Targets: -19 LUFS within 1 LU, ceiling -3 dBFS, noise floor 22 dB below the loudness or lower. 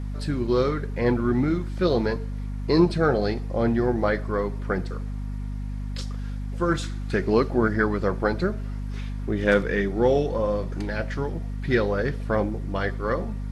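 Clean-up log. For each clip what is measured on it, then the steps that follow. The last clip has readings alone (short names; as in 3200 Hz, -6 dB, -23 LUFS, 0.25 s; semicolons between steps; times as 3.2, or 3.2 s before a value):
hum 50 Hz; harmonics up to 250 Hz; hum level -28 dBFS; loudness -25.5 LUFS; peak -6.0 dBFS; loudness target -19.0 LUFS
-> de-hum 50 Hz, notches 5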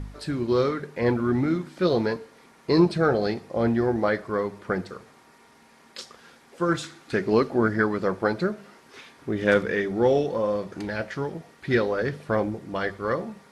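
hum none; loudness -25.5 LUFS; peak -6.5 dBFS; loudness target -19.0 LUFS
-> gain +6.5 dB; limiter -3 dBFS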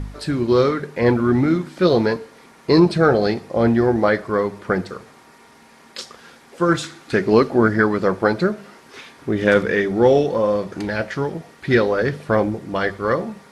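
loudness -19.0 LUFS; peak -3.0 dBFS; noise floor -49 dBFS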